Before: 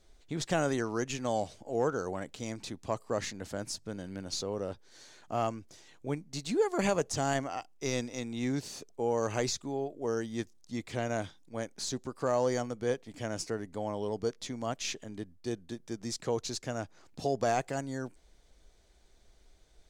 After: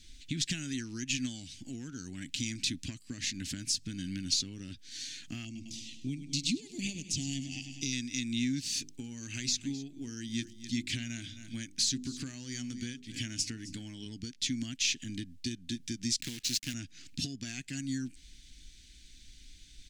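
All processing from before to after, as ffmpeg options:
-filter_complex "[0:a]asettb=1/sr,asplit=3[s0][s1][s2];[s0]atrim=end=5.454[s3];[s1]atrim=start=5.45:end=7.93,asetpts=PTS-STARTPTS,afade=t=in:d=0.004:c=qsin,afade=t=out:st=2.476:d=0.004:c=qsin,asuperstop=centerf=1400:order=4:qfactor=0.79,highshelf=f=7600:g=-4.5,aecho=1:1:102|204|306|408|510|612:0.224|0.132|0.0779|0.046|0.0271|0.016,atrim=end_sample=109368[s4];[s2]atrim=start=7.926[s5];[s3][s4]acrossfade=d=0.004:c1=hsin:c2=qsin[s6];[s6][s5]acrossfade=d=0.004:c1=qsin:c2=hsin,asettb=1/sr,asplit=3[s7][s8][s9];[s7]atrim=end=8.784[s10];[s8]atrim=start=8.78:end=14.06,asetpts=PTS-STARTPTS,afade=t=in:d=0.004:c=qsin,afade=t=out:st=5.276:d=0.004:c=qsin,bandreject=f=50:t=h:w=6,bandreject=f=100:t=h:w=6,bandreject=f=150:t=h:w=6,bandreject=f=200:t=h:w=6,bandreject=f=250:t=h:w=6,bandreject=f=300:t=h:w=6,bandreject=f=350:t=h:w=6,bandreject=f=400:t=h:w=6,aecho=1:1:262:0.106,atrim=end_sample=232848[s11];[s9]atrim=start=14.056[s12];[s10][s11]acrossfade=d=0.004:c1=hsin:c2=qsin[s13];[s13][s12]acrossfade=d=0.004:c1=qsin:c2=hsin,asettb=1/sr,asplit=3[s14][s15][s16];[s14]atrim=end=16.214[s17];[s15]atrim=start=16.21:end=16.74,asetpts=PTS-STARTPTS,afade=t=in:d=0.004:c=qsin,afade=t=out:st=0.526:d=0.004:c=qsin,highpass=f=140:p=1,bandreject=f=417.3:t=h:w=4,bandreject=f=834.6:t=h:w=4,acrusher=bits=7:dc=4:mix=0:aa=0.000001[s18];[s16]atrim=start=16.736[s19];[s17][s18]acrossfade=d=0.004:c1=hsin:c2=qsin[s20];[s20][s19]acrossfade=d=0.004:c1=qsin:c2=hsin,equalizer=f=210:w=6.2:g=-6.5,acompressor=threshold=0.01:ratio=6,firequalizer=gain_entry='entry(130,0);entry(260,5);entry(470,-29);entry(1100,-25);entry(1600,-4);entry(2600,8);entry(7800,5);entry(12000,0)':delay=0.05:min_phase=1,volume=2.37"

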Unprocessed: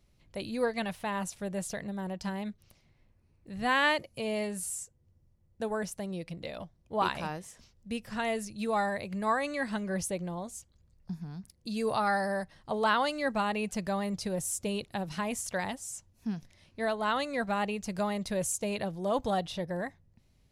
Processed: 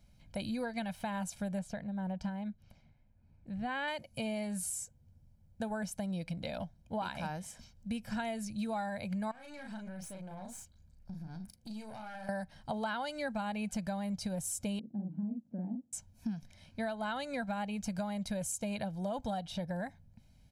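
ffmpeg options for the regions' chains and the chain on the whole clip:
-filter_complex "[0:a]asettb=1/sr,asplit=3[s0][s1][s2];[s0]atrim=end=1.594[s3];[s1]atrim=start=1.59:end=3.88,asetpts=PTS-STARTPTS,afade=t=in:d=0.004:c=qsin,afade=t=out:st=2.286:d=0.004:c=qsin,lowpass=f=2100:p=1,tremolo=f=1.7:d=0.54[s4];[s2]atrim=start=3.876[s5];[s3][s4]acrossfade=d=0.004:c1=hsin:c2=qsin[s6];[s6][s5]acrossfade=d=0.004:c1=qsin:c2=hsin,asettb=1/sr,asplit=3[s7][s8][s9];[s7]atrim=end=9.314[s10];[s8]atrim=start=9.31:end=12.29,asetpts=PTS-STARTPTS,afade=t=in:d=0.004:c=qsin,afade=t=out:st=2.976:d=0.004:c=qsin,asplit=2[s11][s12];[s12]adelay=37,volume=0.596[s13];[s11][s13]amix=inputs=2:normalize=0,atrim=end_sample=131418,acompressor=threshold=0.00794:ratio=8:attack=3.2:release=140:knee=1:detection=peak,aeval=exprs='(tanh(141*val(0)+0.55)-tanh(0.55))/141':c=same[s14];[s9]atrim=start=12.286[s15];[s10][s14]acrossfade=d=0.004:c1=hsin:c2=qsin[s16];[s16][s15]acrossfade=d=0.004:c1=qsin:c2=hsin,asettb=1/sr,asplit=3[s17][s18][s19];[s17]atrim=end=14.794[s20];[s18]atrim=start=14.79:end=15.93,asetpts=PTS-STARTPTS,afade=t=in:d=0.004:c=qsin,afade=t=out:st=1.136:d=0.004:c=qsin,acompressor=mode=upward:threshold=0.0126:ratio=2.5:attack=3.2:release=140:knee=2.83:detection=peak,asuperpass=centerf=260:order=4:qfactor=1.7,asplit=2[s21][s22];[s22]adelay=44,volume=0.75[s23];[s21][s23]amix=inputs=2:normalize=0,atrim=end_sample=50274[s24];[s19]atrim=start=15.926[s25];[s20][s24]acrossfade=d=0.004:c1=hsin:c2=qsin[s26];[s26][s25]acrossfade=d=0.004:c1=qsin:c2=hsin,equalizer=f=220:w=1.9:g=5.5,aecho=1:1:1.3:0.65,acompressor=threshold=0.02:ratio=6"

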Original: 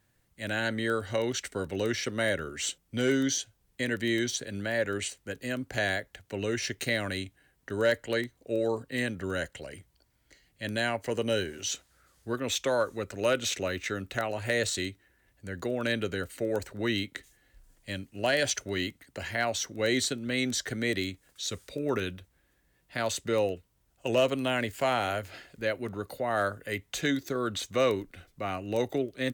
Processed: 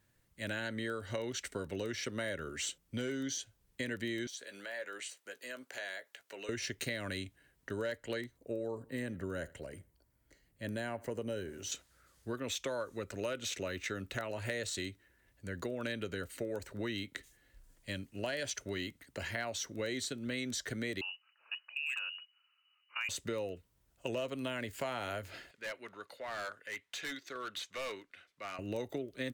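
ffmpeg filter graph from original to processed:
-filter_complex "[0:a]asettb=1/sr,asplit=3[s0][s1][s2];[s0]atrim=end=4.274[s3];[s1]atrim=start=4.27:end=6.49,asetpts=PTS-STARTPTS,afade=t=in:d=0.004:c=qsin,afade=t=out:st=2.216:d=0.004:c=qsin,highpass=580,acompressor=threshold=0.00708:ratio=2:attack=3.2:release=140:knee=1:detection=peak,asplit=2[s4][s5];[s5]adelay=16,volume=0.266[s6];[s4][s6]amix=inputs=2:normalize=0,atrim=end_sample=97902[s7];[s2]atrim=start=6.486[s8];[s3][s7]acrossfade=d=0.004:c1=hsin:c2=qsin[s9];[s9][s8]acrossfade=d=0.004:c1=qsin:c2=hsin,asettb=1/sr,asplit=3[s10][s11][s12];[s10]atrim=end=8.374[s13];[s11]atrim=start=8.37:end=11.72,asetpts=PTS-STARTPTS,afade=t=in:d=0.004:c=qsin,afade=t=out:st=3.346:d=0.004:c=qsin,equalizer=f=3600:t=o:w=2.3:g=-9,asplit=2[s14][s15];[s15]adelay=81,lowpass=f=4000:p=1,volume=0.0708,asplit=2[s16][s17];[s17]adelay=81,lowpass=f=4000:p=1,volume=0.29[s18];[s14][s16][s18]amix=inputs=3:normalize=0,atrim=end_sample=147735[s19];[s12]atrim=start=11.716[s20];[s13][s19]acrossfade=d=0.004:c1=hsin:c2=qsin[s21];[s21][s20]acrossfade=d=0.004:c1=qsin:c2=hsin,asettb=1/sr,asplit=3[s22][s23][s24];[s22]atrim=end=21.014[s25];[s23]atrim=start=21.01:end=23.09,asetpts=PTS-STARTPTS,afade=t=in:d=0.004:c=qsin,afade=t=out:st=2.076:d=0.004:c=qsin,lowpass=f=2600:t=q:w=0.5098,lowpass=f=2600:t=q:w=0.6013,lowpass=f=2600:t=q:w=0.9,lowpass=f=2600:t=q:w=2.563,afreqshift=-3000,highpass=1400,asoftclip=type=hard:threshold=0.0708[s26];[s24]atrim=start=23.086[s27];[s25][s26]acrossfade=d=0.004:c1=hsin:c2=qsin[s28];[s28][s27]acrossfade=d=0.004:c1=qsin:c2=hsin,asettb=1/sr,asplit=3[s29][s30][s31];[s29]atrim=end=25.514[s32];[s30]atrim=start=25.51:end=28.59,asetpts=PTS-STARTPTS,afade=t=in:d=0.004:c=qsin,afade=t=out:st=3.076:d=0.004:c=qsin,bandpass=f=2300:t=q:w=0.72,asoftclip=type=hard:threshold=0.02[s33];[s31]atrim=start=28.586[s34];[s32][s33]acrossfade=d=0.004:c1=hsin:c2=qsin[s35];[s35][s34]acrossfade=d=0.004:c1=qsin:c2=hsin,bandreject=f=760:w=12,acompressor=threshold=0.0251:ratio=6,volume=0.75"

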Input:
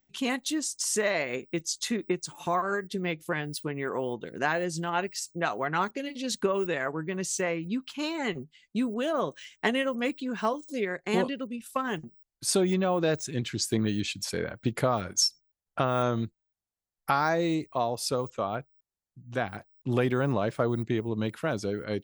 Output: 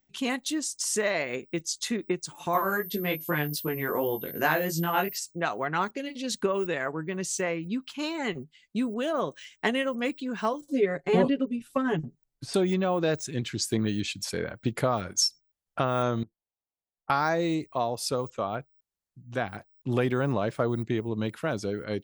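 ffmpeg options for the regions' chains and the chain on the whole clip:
-filter_complex "[0:a]asettb=1/sr,asplit=3[s0][s1][s2];[s0]atrim=end=2.534[s3];[s1]atrim=start=2.53:end=5.18,asetpts=PTS-STARTPTS,afade=t=in:d=0.004:c=qsin,afade=t=out:st=2.646:d=0.004:c=qsin,acontrast=45,aeval=exprs='val(0)+0.0178*sin(2*PI*13000*n/s)':c=same,flanger=delay=18:depth=3.3:speed=2.6[s4];[s2]atrim=start=5.176[s5];[s3][s4]acrossfade=d=0.004:c1=hsin:c2=qsin[s6];[s6][s5]acrossfade=d=0.004:c1=qsin:c2=hsin,asettb=1/sr,asplit=3[s7][s8][s9];[s7]atrim=end=10.614[s10];[s8]atrim=start=10.61:end=12.54,asetpts=PTS-STARTPTS,afade=t=in:d=0.004:c=qsin,afade=t=out:st=1.926:d=0.004:c=qsin,acrossover=split=4600[s11][s12];[s12]acompressor=threshold=0.00251:ratio=4:attack=1:release=60[s13];[s11][s13]amix=inputs=2:normalize=0,tiltshelf=f=700:g=5,aecho=1:1:7.1:0.98,atrim=end_sample=85113[s14];[s9]atrim=start=12.536[s15];[s10][s14]acrossfade=d=0.004:c1=hsin:c2=qsin[s16];[s16][s15]acrossfade=d=0.004:c1=qsin:c2=hsin,asettb=1/sr,asplit=3[s17][s18][s19];[s17]atrim=end=16.234[s20];[s18]atrim=start=16.23:end=17.1,asetpts=PTS-STARTPTS,afade=t=in:d=0.004:c=qsin,afade=t=out:st=0.866:d=0.004:c=qsin,lowpass=f=1000:w=0.5412,lowpass=f=1000:w=1.3066,lowshelf=f=210:g=-11.5,acompressor=threshold=0.00251:ratio=2:attack=3.2:release=140:knee=1:detection=peak[s21];[s19]atrim=start=17.096[s22];[s20][s21]acrossfade=d=0.004:c1=hsin:c2=qsin[s23];[s23][s22]acrossfade=d=0.004:c1=qsin:c2=hsin"

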